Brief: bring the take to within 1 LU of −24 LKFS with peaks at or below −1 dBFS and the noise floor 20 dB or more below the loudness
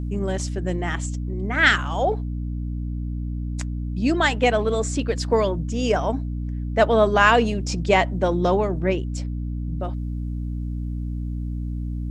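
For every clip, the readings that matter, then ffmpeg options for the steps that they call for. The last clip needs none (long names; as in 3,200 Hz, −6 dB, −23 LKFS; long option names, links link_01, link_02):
mains hum 60 Hz; hum harmonics up to 300 Hz; level of the hum −25 dBFS; integrated loudness −23.0 LKFS; sample peak −2.5 dBFS; target loudness −24.0 LKFS
→ -af "bandreject=frequency=60:width_type=h:width=6,bandreject=frequency=120:width_type=h:width=6,bandreject=frequency=180:width_type=h:width=6,bandreject=frequency=240:width_type=h:width=6,bandreject=frequency=300:width_type=h:width=6"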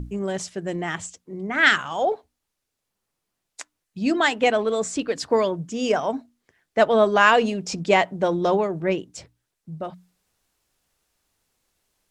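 mains hum none found; integrated loudness −22.0 LKFS; sample peak −3.0 dBFS; target loudness −24.0 LKFS
→ -af "volume=-2dB"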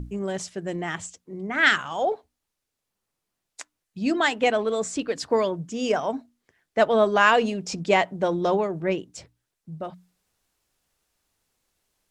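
integrated loudness −24.0 LKFS; sample peak −5.0 dBFS; background noise floor −83 dBFS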